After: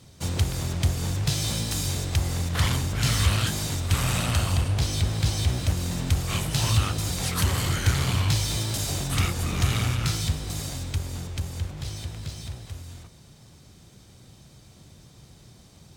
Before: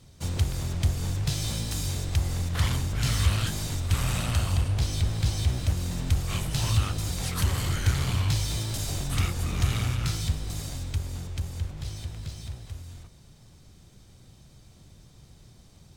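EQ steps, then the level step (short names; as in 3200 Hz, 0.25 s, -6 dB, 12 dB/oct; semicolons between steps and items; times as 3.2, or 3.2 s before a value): HPF 93 Hz 6 dB/oct; +4.5 dB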